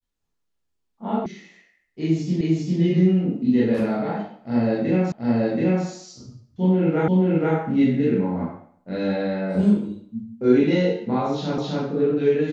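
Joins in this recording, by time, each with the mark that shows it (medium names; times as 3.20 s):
1.26 s: sound stops dead
2.41 s: repeat of the last 0.4 s
5.12 s: repeat of the last 0.73 s
7.08 s: repeat of the last 0.48 s
11.58 s: repeat of the last 0.26 s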